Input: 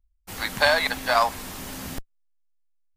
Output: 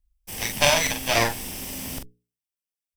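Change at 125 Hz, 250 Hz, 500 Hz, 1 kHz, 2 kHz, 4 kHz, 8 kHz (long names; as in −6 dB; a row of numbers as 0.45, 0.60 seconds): +7.0, +3.0, −0.5, −3.5, −1.5, +3.0, +11.0 decibels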